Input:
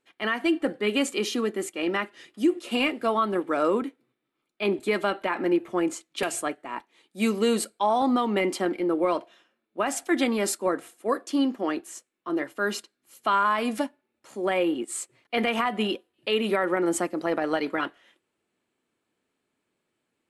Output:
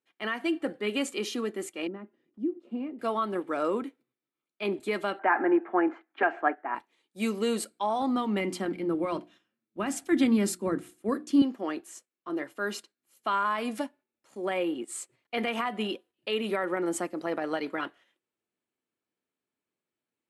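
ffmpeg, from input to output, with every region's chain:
-filter_complex "[0:a]asettb=1/sr,asplit=3[a][b][c];[a]atrim=end=1.874[d];[b]atrim=start=1.87:end=2.99,asetpts=PTS-STARTPTS,afade=t=in:d=0.004:c=qsin,afade=t=out:st=1.116:d=0.004:c=qsin,acompressor=mode=upward:threshold=-39dB:ratio=2.5:attack=3.2:release=140:knee=2.83:detection=peak,bandpass=f=230:t=q:w=1.5[e];[c]atrim=start=2.986[f];[d][e]acrossfade=d=0.004:c1=hsin:c2=qsin[g];[g][f]acrossfade=d=0.004:c1=qsin:c2=hsin,asettb=1/sr,asplit=3[h][i][j];[h]atrim=end=5.194[k];[i]atrim=start=5.19:end=6.75,asetpts=PTS-STARTPTS,afade=t=in:d=0.004:c=qsin,afade=t=out:st=1.556:d=0.004:c=qsin,acontrast=36,highpass=f=260:w=0.5412,highpass=f=260:w=1.3066,equalizer=f=520:t=q:w=4:g=-6,equalizer=f=780:t=q:w=4:g=10,equalizer=f=1.6k:t=q:w=4:g=8,lowpass=f=2k:w=0.5412,lowpass=f=2k:w=1.3066[l];[j]atrim=start=6.746[m];[k][l]acrossfade=d=0.004:c1=hsin:c2=qsin[n];[n][m]acrossfade=d=0.004:c1=qsin:c2=hsin,asettb=1/sr,asplit=3[o][p][q];[o]atrim=end=7.614[r];[p]atrim=start=7.61:end=11.42,asetpts=PTS-STARTPTS,afade=t=in:d=0.004:c=qsin,afade=t=out:st=3.806:d=0.004:c=qsin,asubboost=boost=9.5:cutoff=230,bandreject=f=60:t=h:w=6,bandreject=f=120:t=h:w=6,bandreject=f=180:t=h:w=6,bandreject=f=240:t=h:w=6,bandreject=f=300:t=h:w=6,bandreject=f=360:t=h:w=6[s];[q]atrim=start=11.416[t];[r][s]acrossfade=d=0.004:c1=hsin:c2=qsin[u];[u][t]acrossfade=d=0.004:c1=qsin:c2=hsin,highpass=64,agate=range=-7dB:threshold=-49dB:ratio=16:detection=peak,volume=-5dB"

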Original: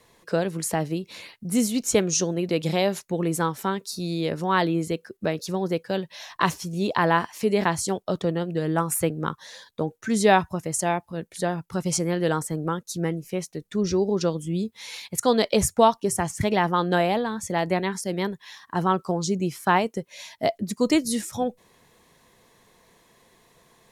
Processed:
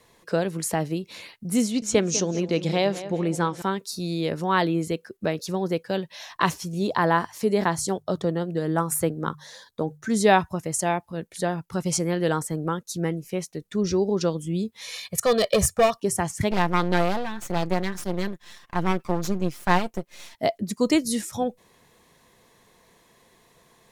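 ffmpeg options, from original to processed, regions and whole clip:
-filter_complex "[0:a]asettb=1/sr,asplit=3[a][b][c];[a]atrim=end=1.624[d];[b]atrim=start=1.62:end=3.62,asetpts=PTS-STARTPTS,afade=t=in:d=0.004:c=qsin,afade=t=out:st=1.996:d=0.004:c=qsin,lowpass=7.4k,asplit=2[e][f];[f]adelay=199,lowpass=f=3.6k:p=1,volume=-13dB,asplit=2[g][h];[h]adelay=199,lowpass=f=3.6k:p=1,volume=0.46,asplit=2[i][j];[j]adelay=199,lowpass=f=3.6k:p=1,volume=0.46,asplit=2[k][l];[l]adelay=199,lowpass=f=3.6k:p=1,volume=0.46,asplit=2[m][n];[n]adelay=199,lowpass=f=3.6k:p=1,volume=0.46[o];[e][g][i][k][m][o]amix=inputs=6:normalize=0,atrim=end_sample=88200[p];[c]atrim=start=3.616[q];[d][p]acrossfade=d=0.004:c1=hsin:c2=qsin[r];[r][q]acrossfade=d=0.004:c1=qsin:c2=hsin,asettb=1/sr,asplit=3[s][t][u];[s]atrim=end=6.794[v];[t]atrim=start=6.79:end=10.26,asetpts=PTS-STARTPTS,afade=t=in:d=0.004:c=qsin,afade=t=out:st=3.466:d=0.004:c=qsin,equalizer=f=2.6k:t=o:w=0.6:g=-6.5,bandreject=f=50:t=h:w=6,bandreject=f=100:t=h:w=6,bandreject=f=150:t=h:w=6[w];[u]atrim=start=10.256[x];[v][w]acrossfade=d=0.004:c1=hsin:c2=qsin[y];[y][x]acrossfade=d=0.004:c1=qsin:c2=hsin,asettb=1/sr,asplit=3[z][aa][ab];[z]atrim=end=14.814[ac];[aa]atrim=start=14.81:end=16,asetpts=PTS-STARTPTS,afade=t=in:d=0.004:c=qsin,afade=t=out:st=1.186:d=0.004:c=qsin,volume=16.5dB,asoftclip=hard,volume=-16.5dB,aecho=1:1:1.7:0.75,atrim=end_sample=52479[ad];[ab]atrim=start=15.996[ae];[ac][ad]acrossfade=d=0.004:c1=hsin:c2=qsin[af];[af][ae]acrossfade=d=0.004:c1=qsin:c2=hsin,asettb=1/sr,asplit=3[ag][ah][ai];[ag]atrim=end=16.514[aj];[ah]atrim=start=16.51:end=20.35,asetpts=PTS-STARTPTS,afade=t=in:d=0.004:c=qsin,afade=t=out:st=3.836:d=0.004:c=qsin,aeval=exprs='max(val(0),0)':c=same,aecho=1:1:5.7:0.45,atrim=end_sample=169344[ak];[ai]atrim=start=20.346[al];[aj][ak]acrossfade=d=0.004:c1=hsin:c2=qsin[am];[am][al]acrossfade=d=0.004:c1=qsin:c2=hsin"

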